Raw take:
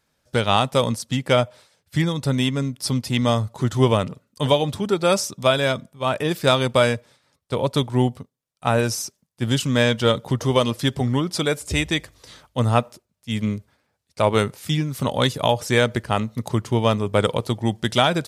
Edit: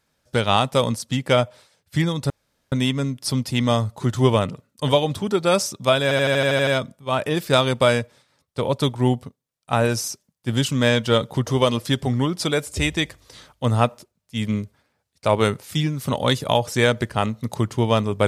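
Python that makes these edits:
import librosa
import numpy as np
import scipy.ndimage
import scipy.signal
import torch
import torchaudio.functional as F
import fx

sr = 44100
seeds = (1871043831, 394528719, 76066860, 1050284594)

y = fx.edit(x, sr, fx.insert_room_tone(at_s=2.3, length_s=0.42),
    fx.stutter(start_s=5.61, slice_s=0.08, count=9), tone=tone)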